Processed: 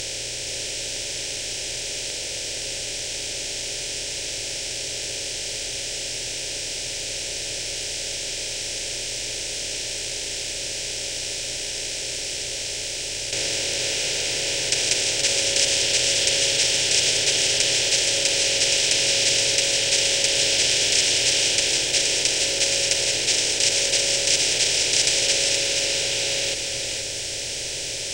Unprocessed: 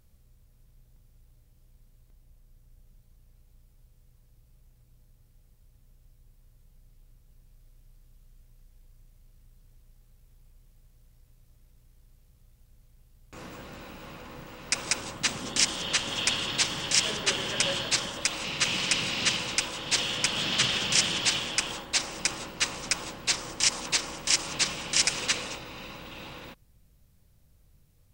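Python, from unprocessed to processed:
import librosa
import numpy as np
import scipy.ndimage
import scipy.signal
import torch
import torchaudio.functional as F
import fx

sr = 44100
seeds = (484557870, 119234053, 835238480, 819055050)

p1 = fx.bin_compress(x, sr, power=0.2)
p2 = fx.fixed_phaser(p1, sr, hz=480.0, stages=4)
p3 = p2 + fx.echo_single(p2, sr, ms=472, db=-6.0, dry=0)
y = F.gain(torch.from_numpy(p3), -1.0).numpy()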